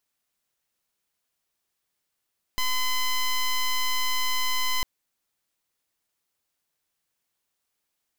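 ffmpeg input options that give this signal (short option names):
-f lavfi -i "aevalsrc='0.0631*(2*lt(mod(1020*t,1),0.11)-1)':d=2.25:s=44100"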